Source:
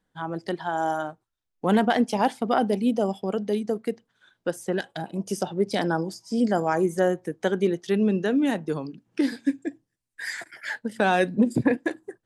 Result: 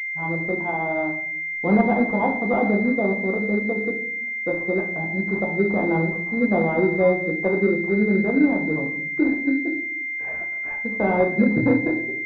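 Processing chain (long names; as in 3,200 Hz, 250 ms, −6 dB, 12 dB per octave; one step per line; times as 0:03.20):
rectangular room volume 130 cubic metres, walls mixed, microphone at 0.81 metres
switching amplifier with a slow clock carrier 2,100 Hz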